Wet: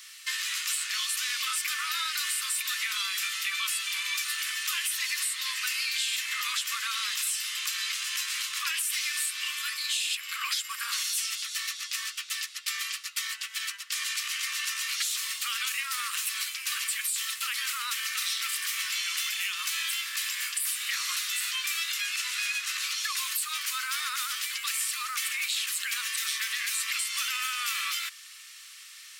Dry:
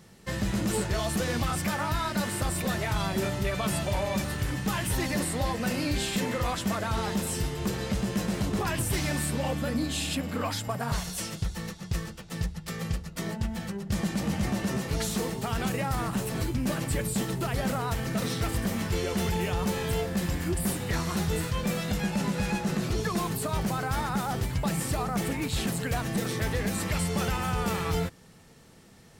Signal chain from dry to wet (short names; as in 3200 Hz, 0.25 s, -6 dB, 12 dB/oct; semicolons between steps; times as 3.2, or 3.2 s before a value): in parallel at +1.5 dB: limiter -30.5 dBFS, peak gain reduction 11.5 dB; on the sum: steep high-pass 1100 Hz 96 dB/oct; resonant high shelf 1900 Hz +7 dB, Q 1.5; compressor 6:1, threshold -27 dBFS, peak gain reduction 9 dB